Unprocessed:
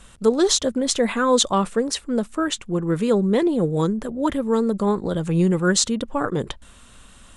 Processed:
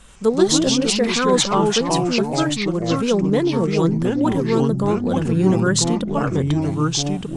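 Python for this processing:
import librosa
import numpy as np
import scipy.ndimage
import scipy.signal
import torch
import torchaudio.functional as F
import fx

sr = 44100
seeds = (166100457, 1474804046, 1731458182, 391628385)

y = fx.echo_pitch(x, sr, ms=82, semitones=-3, count=3, db_per_echo=-3.0)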